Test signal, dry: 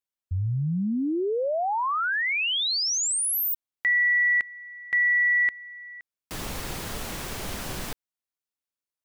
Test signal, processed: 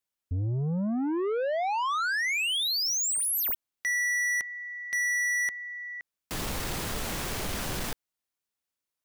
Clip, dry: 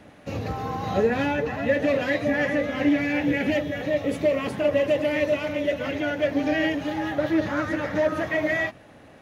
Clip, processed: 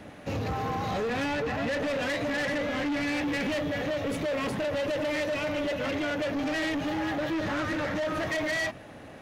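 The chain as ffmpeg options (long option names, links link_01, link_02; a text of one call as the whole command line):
ffmpeg -i in.wav -filter_complex "[0:a]acrossover=split=1700[link_01][link_02];[link_01]alimiter=limit=-20.5dB:level=0:latency=1[link_03];[link_03][link_02]amix=inputs=2:normalize=0,asoftclip=type=tanh:threshold=-30dB,volume=3.5dB" out.wav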